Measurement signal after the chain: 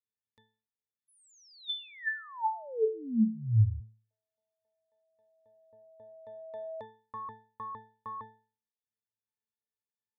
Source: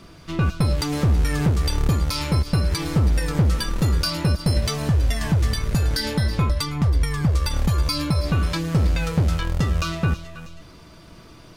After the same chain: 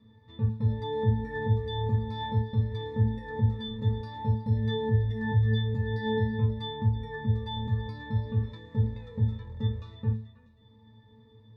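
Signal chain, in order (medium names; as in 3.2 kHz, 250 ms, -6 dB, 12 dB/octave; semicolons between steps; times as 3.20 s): pitch-class resonator A, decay 0.4 s; trim +5.5 dB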